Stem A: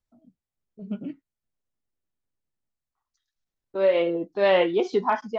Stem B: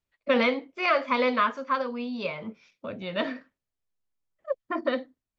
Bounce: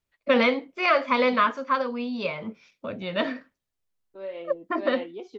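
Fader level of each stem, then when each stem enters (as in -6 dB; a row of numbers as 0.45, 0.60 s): -15.5, +2.5 dB; 0.40, 0.00 s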